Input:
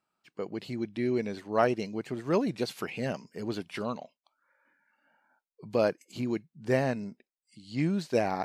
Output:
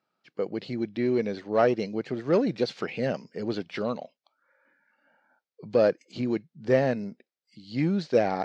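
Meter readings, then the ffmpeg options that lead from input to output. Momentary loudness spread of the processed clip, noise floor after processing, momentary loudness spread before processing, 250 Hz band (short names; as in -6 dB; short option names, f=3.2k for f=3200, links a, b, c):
9 LU, under -85 dBFS, 10 LU, +3.0 dB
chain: -filter_complex "[0:a]asplit=2[a][b];[b]volume=25.5dB,asoftclip=hard,volume=-25.5dB,volume=-6dB[c];[a][c]amix=inputs=2:normalize=0,highpass=100,equalizer=f=510:t=q:w=4:g=5,equalizer=f=1k:t=q:w=4:g=-5,equalizer=f=2.7k:t=q:w=4:g=-3,lowpass=f=5.5k:w=0.5412,lowpass=f=5.5k:w=1.3066"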